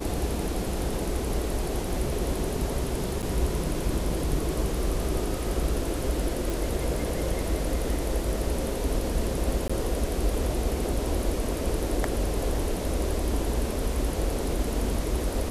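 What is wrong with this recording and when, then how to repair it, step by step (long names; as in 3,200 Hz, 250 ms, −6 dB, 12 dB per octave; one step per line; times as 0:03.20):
0:03.22–0:03.23: drop-out 7.9 ms
0:06.50: click
0:09.68–0:09.70: drop-out 15 ms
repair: click removal
repair the gap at 0:03.22, 7.9 ms
repair the gap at 0:09.68, 15 ms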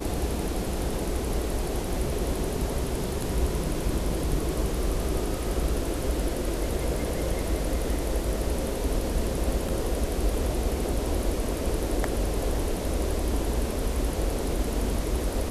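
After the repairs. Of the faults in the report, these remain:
none of them is left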